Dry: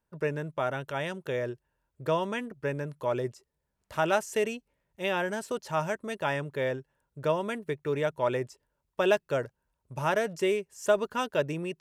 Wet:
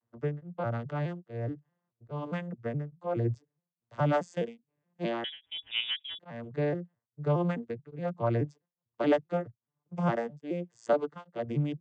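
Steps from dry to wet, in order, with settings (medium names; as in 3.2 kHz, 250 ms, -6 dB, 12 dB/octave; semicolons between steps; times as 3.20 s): vocoder on a broken chord major triad, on A#2, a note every 210 ms; 5.24–6.19 s: frequency inversion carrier 3.6 kHz; tremolo of two beating tones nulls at 1.2 Hz; trim +2 dB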